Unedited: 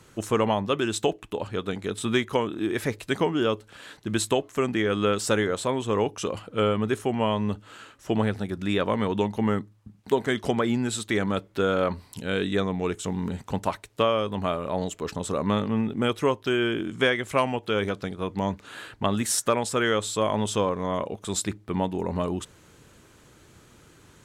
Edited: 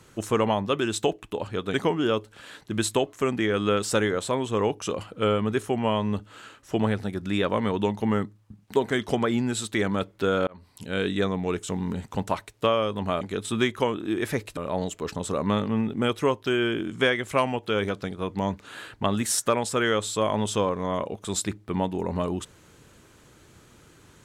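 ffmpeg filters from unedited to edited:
-filter_complex "[0:a]asplit=5[s0][s1][s2][s3][s4];[s0]atrim=end=1.742[s5];[s1]atrim=start=3.098:end=11.83,asetpts=PTS-STARTPTS,afade=t=out:st=8.728:d=0.004:c=hsin[s6];[s2]atrim=start=11.83:end=14.572,asetpts=PTS-STARTPTS,afade=t=in:d=0.51[s7];[s3]atrim=start=1.738:end=3.102[s8];[s4]atrim=start=14.568[s9];[s6][s7]concat=n=2:v=0:a=1[s10];[s5][s10]acrossfade=d=0.004:c1=hsin:c2=hsin[s11];[s11][s8]acrossfade=d=0.004:c1=hsin:c2=hsin[s12];[s12][s9]acrossfade=d=0.004:c1=hsin:c2=hsin"

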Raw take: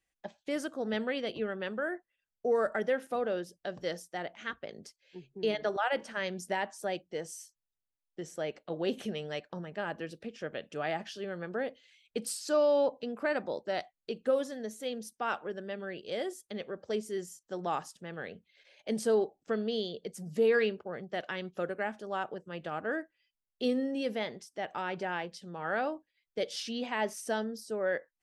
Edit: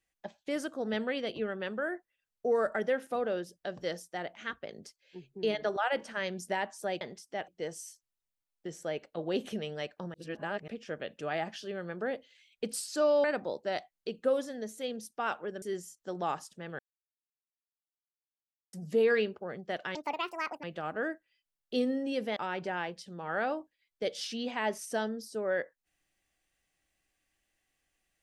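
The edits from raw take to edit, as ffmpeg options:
-filter_complex "[0:a]asplit=12[s0][s1][s2][s3][s4][s5][s6][s7][s8][s9][s10][s11];[s0]atrim=end=7.012[s12];[s1]atrim=start=24.248:end=24.722[s13];[s2]atrim=start=7.008:end=9.672[s14];[s3]atrim=start=9.668:end=10.212,asetpts=PTS-STARTPTS,areverse[s15];[s4]atrim=start=10.208:end=12.772[s16];[s5]atrim=start=13.258:end=15.642[s17];[s6]atrim=start=17.058:end=18.23,asetpts=PTS-STARTPTS,afade=t=out:st=1.168:d=0.004:c=hsin[s18];[s7]atrim=start=18.23:end=20.17,asetpts=PTS-STARTPTS,volume=0[s19];[s8]atrim=start=20.17:end=21.394,asetpts=PTS-STARTPTS,afade=t=in:d=0.004:c=hsin[s20];[s9]atrim=start=21.39:end=22.52,asetpts=PTS-STARTPTS,asetrate=72765,aresample=44100[s21];[s10]atrim=start=22.516:end=24.252[s22];[s11]atrim=start=24.718[s23];[s12][s13]acrossfade=d=0.004:c1=hsin:c2=hsin[s24];[s24][s14]acrossfade=d=0.004:c1=hsin:c2=hsin[s25];[s25][s15]acrossfade=d=0.004:c1=hsin:c2=hsin[s26];[s26][s16]acrossfade=d=0.004:c1=hsin:c2=hsin[s27];[s27][s17]acrossfade=d=0.004:c1=hsin:c2=hsin[s28];[s18][s19][s20]concat=n=3:v=0:a=1[s29];[s28][s29]acrossfade=d=0.004:c1=hsin:c2=hsin[s30];[s30][s21]acrossfade=d=0.004:c1=hsin:c2=hsin[s31];[s31][s22]acrossfade=d=0.004:c1=hsin:c2=hsin[s32];[s32][s23]acrossfade=d=0.004:c1=hsin:c2=hsin"

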